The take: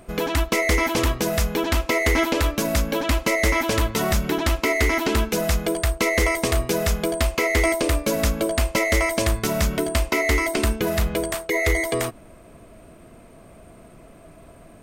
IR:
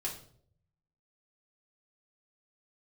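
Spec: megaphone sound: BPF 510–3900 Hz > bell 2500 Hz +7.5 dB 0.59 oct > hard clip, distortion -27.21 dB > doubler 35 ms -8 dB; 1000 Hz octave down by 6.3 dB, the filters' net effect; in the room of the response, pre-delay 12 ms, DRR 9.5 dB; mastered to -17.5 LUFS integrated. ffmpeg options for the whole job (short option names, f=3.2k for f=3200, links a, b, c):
-filter_complex "[0:a]equalizer=f=1k:t=o:g=-8.5,asplit=2[a][b];[1:a]atrim=start_sample=2205,adelay=12[c];[b][c]afir=irnorm=-1:irlink=0,volume=-11.5dB[d];[a][d]amix=inputs=2:normalize=0,highpass=510,lowpass=3.9k,equalizer=f=2.5k:t=o:w=0.59:g=7.5,asoftclip=type=hard:threshold=-14dB,asplit=2[e][f];[f]adelay=35,volume=-8dB[g];[e][g]amix=inputs=2:normalize=0,volume=6dB"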